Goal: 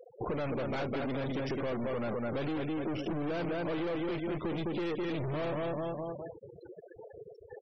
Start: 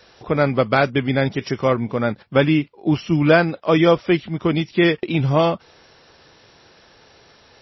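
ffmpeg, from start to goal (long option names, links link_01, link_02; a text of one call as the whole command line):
ffmpeg -i in.wav -filter_complex "[0:a]asettb=1/sr,asplit=3[link_01][link_02][link_03];[link_01]atrim=end=2.234[link_04];[link_02]atrim=start=2.23:end=4.26,asetpts=PTS-STARTPTS,afade=type=in:duration=0.004:curve=qsin,afade=type=out:start_time=2.026:duration=0.004:curve=qsin,aeval=exprs='val(0)*gte(abs(val(0)),0.02)':channel_layout=same[link_05];[link_03]atrim=start=4.256[link_06];[link_04][link_05]acrossfade=duration=0.004:curve1=hsin:curve2=qsin[link_07];[link_07][link_06]acrossfade=duration=0.004:curve1=qsin:curve2=hsin,aecho=1:1:208|416|624|832:0.398|0.135|0.046|0.0156,aeval=exprs='(tanh(39.8*val(0)+0.35)-tanh(0.35))/39.8':channel_layout=same,afftfilt=real='re*gte(hypot(re,im),0.00178)':imag='im*gte(hypot(re,im),0.00178)':win_size=1024:overlap=0.75,acontrast=79,afftfilt=real='re*gte(hypot(re,im),0.0224)':imag='im*gte(hypot(re,im),0.0224)':win_size=1024:overlap=0.75,lowpass=4700,equalizer=frequency=420:width_type=o:width=1.4:gain=6,acompressor=threshold=-33dB:ratio=4,volume=-1dB" out.wav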